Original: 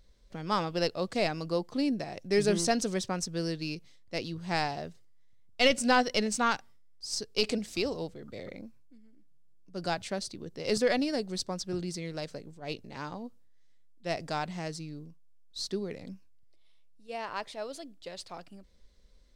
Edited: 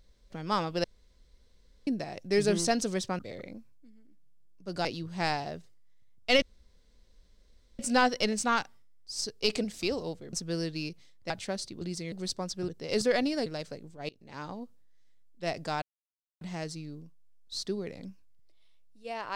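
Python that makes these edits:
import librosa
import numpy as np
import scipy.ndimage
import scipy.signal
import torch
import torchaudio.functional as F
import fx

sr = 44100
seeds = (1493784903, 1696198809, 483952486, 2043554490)

y = fx.edit(x, sr, fx.room_tone_fill(start_s=0.84, length_s=1.03),
    fx.swap(start_s=3.19, length_s=0.97, other_s=8.27, other_length_s=1.66),
    fx.insert_room_tone(at_s=5.73, length_s=1.37),
    fx.swap(start_s=10.44, length_s=0.78, other_s=11.78, other_length_s=0.31),
    fx.fade_in_from(start_s=12.72, length_s=0.39, floor_db=-23.5),
    fx.insert_silence(at_s=14.45, length_s=0.59), tone=tone)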